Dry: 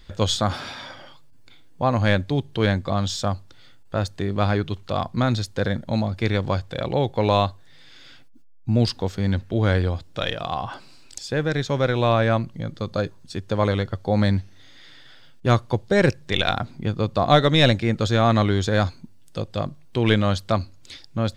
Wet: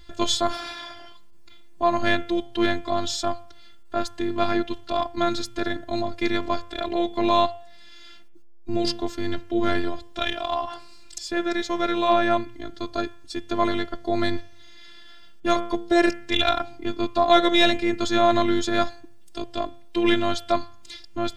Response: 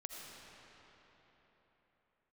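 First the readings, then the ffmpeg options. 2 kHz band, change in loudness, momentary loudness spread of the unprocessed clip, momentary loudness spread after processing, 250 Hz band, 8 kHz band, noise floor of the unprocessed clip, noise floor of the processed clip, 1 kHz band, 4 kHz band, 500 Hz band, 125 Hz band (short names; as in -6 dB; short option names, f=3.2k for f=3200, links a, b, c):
-0.5 dB, -1.5 dB, 12 LU, 14 LU, -0.5 dB, +0.5 dB, -46 dBFS, -42 dBFS, +1.5 dB, 0.0 dB, -1.0 dB, -17.5 dB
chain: -af "bandreject=f=119:t=h:w=4,bandreject=f=238:t=h:w=4,bandreject=f=357:t=h:w=4,bandreject=f=476:t=h:w=4,bandreject=f=595:t=h:w=4,bandreject=f=714:t=h:w=4,bandreject=f=833:t=h:w=4,bandreject=f=952:t=h:w=4,bandreject=f=1.071k:t=h:w=4,bandreject=f=1.19k:t=h:w=4,bandreject=f=1.309k:t=h:w=4,bandreject=f=1.428k:t=h:w=4,bandreject=f=1.547k:t=h:w=4,bandreject=f=1.666k:t=h:w=4,bandreject=f=1.785k:t=h:w=4,bandreject=f=1.904k:t=h:w=4,bandreject=f=2.023k:t=h:w=4,bandreject=f=2.142k:t=h:w=4,bandreject=f=2.261k:t=h:w=4,bandreject=f=2.38k:t=h:w=4,bandreject=f=2.499k:t=h:w=4,bandreject=f=2.618k:t=h:w=4,bandreject=f=2.737k:t=h:w=4,bandreject=f=2.856k:t=h:w=4,bandreject=f=2.975k:t=h:w=4,bandreject=f=3.094k:t=h:w=4,bandreject=f=3.213k:t=h:w=4,bandreject=f=3.332k:t=h:w=4,bandreject=f=3.451k:t=h:w=4,apsyclip=7.5dB,afftfilt=real='hypot(re,im)*cos(PI*b)':imag='0':win_size=512:overlap=0.75,volume=-3.5dB"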